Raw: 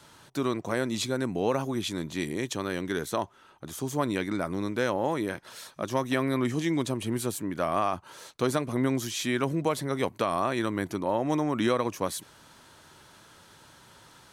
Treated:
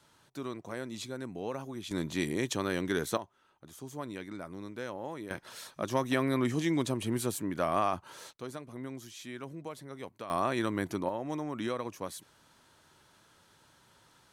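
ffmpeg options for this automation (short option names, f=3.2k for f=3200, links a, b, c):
-af "asetnsamples=n=441:p=0,asendcmd='1.91 volume volume -0.5dB;3.17 volume volume -12dB;5.31 volume volume -2dB;8.33 volume volume -15dB;10.3 volume volume -2.5dB;11.09 volume volume -9dB',volume=-10.5dB"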